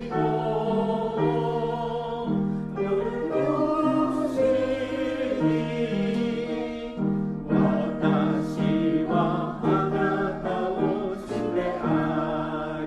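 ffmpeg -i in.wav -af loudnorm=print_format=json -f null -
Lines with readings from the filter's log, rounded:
"input_i" : "-25.8",
"input_tp" : "-10.0",
"input_lra" : "2.1",
"input_thresh" : "-35.8",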